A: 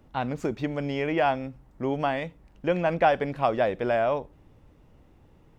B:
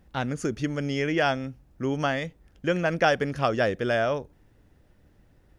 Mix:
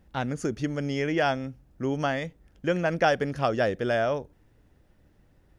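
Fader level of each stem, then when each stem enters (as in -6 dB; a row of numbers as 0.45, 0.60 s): -16.5, -2.0 dB; 0.00, 0.00 s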